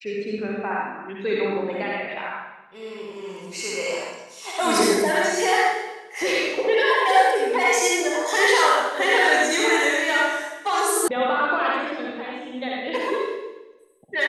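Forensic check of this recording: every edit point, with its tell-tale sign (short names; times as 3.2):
11.08 sound cut off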